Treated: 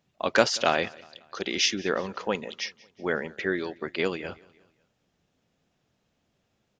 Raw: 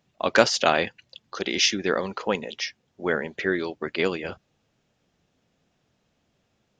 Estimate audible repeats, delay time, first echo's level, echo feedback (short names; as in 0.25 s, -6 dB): 2, 0.183 s, -23.5 dB, 50%